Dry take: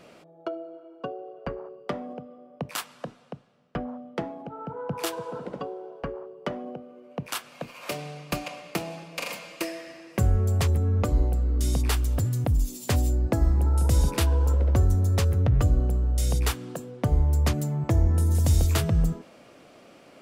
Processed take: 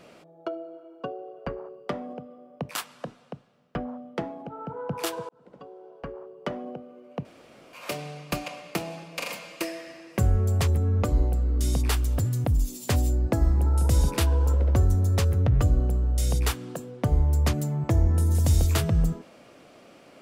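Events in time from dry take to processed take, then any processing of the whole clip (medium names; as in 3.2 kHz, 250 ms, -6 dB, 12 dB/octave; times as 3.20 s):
5.29–6.54 s: fade in
7.25–7.73 s: room tone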